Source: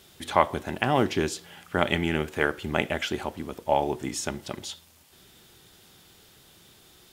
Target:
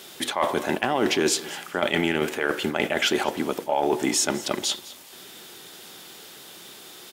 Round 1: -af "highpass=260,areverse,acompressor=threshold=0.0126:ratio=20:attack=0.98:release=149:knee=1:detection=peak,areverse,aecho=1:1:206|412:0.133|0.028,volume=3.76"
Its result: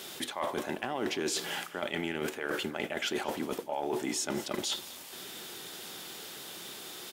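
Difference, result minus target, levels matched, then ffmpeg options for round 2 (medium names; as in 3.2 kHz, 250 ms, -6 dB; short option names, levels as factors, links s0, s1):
compression: peak gain reduction +11 dB
-af "highpass=260,areverse,acompressor=threshold=0.0473:ratio=20:attack=0.98:release=149:knee=1:detection=peak,areverse,aecho=1:1:206|412:0.133|0.028,volume=3.76"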